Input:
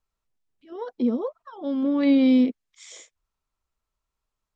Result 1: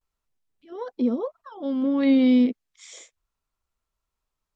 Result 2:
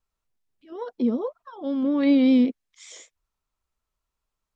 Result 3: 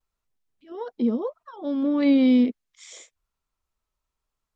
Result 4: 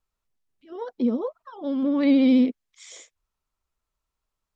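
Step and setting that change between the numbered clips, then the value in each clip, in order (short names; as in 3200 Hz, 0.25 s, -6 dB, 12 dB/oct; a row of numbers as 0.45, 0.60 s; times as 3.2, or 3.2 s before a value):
vibrato, rate: 0.36, 5.3, 0.7, 14 Hz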